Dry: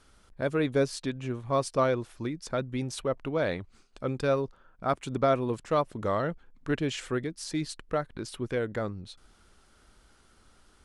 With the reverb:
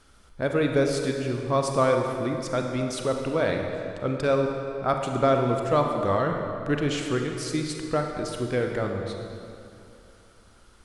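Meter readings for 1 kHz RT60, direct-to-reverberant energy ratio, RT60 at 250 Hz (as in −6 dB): 2.7 s, 2.5 dB, 2.7 s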